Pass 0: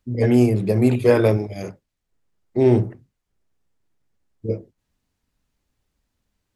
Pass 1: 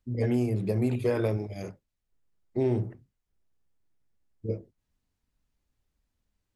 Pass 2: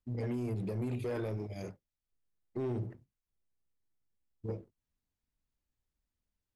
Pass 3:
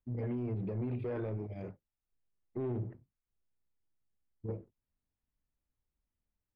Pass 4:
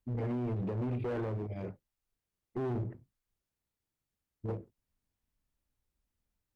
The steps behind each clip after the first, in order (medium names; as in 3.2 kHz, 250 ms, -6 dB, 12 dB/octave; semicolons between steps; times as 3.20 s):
bass shelf 83 Hz +6 dB; compression 5:1, threshold -15 dBFS, peak gain reduction 6 dB; trim -7.5 dB
peak limiter -22 dBFS, peak gain reduction 6.5 dB; waveshaping leveller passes 1; trim -7.5 dB
distance through air 460 m
one-sided clip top -36.5 dBFS; trim +3.5 dB